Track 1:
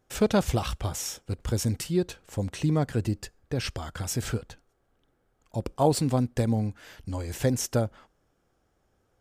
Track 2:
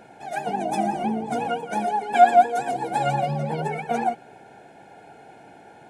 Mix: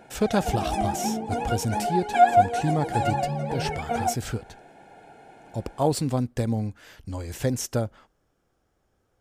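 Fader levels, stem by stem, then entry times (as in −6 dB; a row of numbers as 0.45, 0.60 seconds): −0.5, −2.5 decibels; 0.00, 0.00 seconds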